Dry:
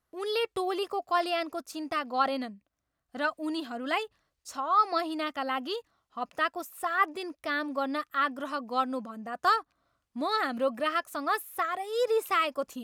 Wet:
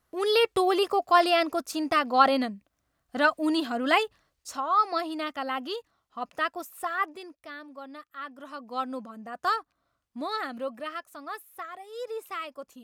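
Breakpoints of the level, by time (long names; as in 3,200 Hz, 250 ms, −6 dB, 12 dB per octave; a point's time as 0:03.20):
0:04.03 +7 dB
0:04.86 0 dB
0:06.84 0 dB
0:07.59 −12 dB
0:08.17 −12 dB
0:08.87 −2 dB
0:10.18 −2 dB
0:11.17 −9 dB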